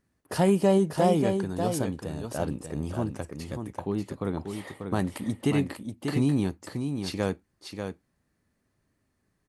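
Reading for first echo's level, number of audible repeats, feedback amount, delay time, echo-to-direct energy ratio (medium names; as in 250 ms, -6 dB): -6.5 dB, 1, no regular repeats, 590 ms, -6.5 dB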